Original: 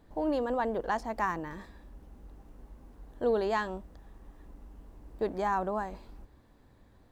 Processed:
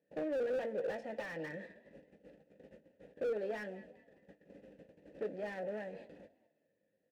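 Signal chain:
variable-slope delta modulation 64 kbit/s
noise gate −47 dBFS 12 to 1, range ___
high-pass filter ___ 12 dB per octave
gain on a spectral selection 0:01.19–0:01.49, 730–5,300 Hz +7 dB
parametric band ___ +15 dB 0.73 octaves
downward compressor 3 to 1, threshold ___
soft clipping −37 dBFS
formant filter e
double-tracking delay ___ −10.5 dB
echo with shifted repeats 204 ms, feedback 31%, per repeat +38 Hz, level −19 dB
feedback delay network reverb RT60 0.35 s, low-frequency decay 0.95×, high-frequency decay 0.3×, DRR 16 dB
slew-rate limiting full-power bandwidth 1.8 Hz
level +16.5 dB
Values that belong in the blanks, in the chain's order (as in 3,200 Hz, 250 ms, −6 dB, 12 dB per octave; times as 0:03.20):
−24 dB, 70 Hz, 180 Hz, −38 dBFS, 19 ms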